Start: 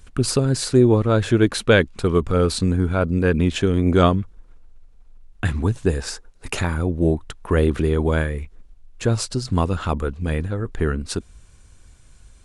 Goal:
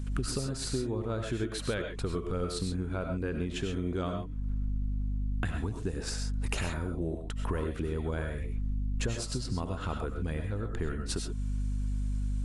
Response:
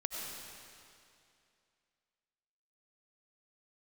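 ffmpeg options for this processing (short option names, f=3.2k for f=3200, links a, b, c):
-filter_complex "[0:a]aeval=exprs='val(0)+0.0251*(sin(2*PI*50*n/s)+sin(2*PI*2*50*n/s)/2+sin(2*PI*3*50*n/s)/3+sin(2*PI*4*50*n/s)/4+sin(2*PI*5*50*n/s)/5)':c=same,acompressor=threshold=-29dB:ratio=8[a];[1:a]atrim=start_sample=2205,atrim=end_sample=6174[b];[a][b]afir=irnorm=-1:irlink=0"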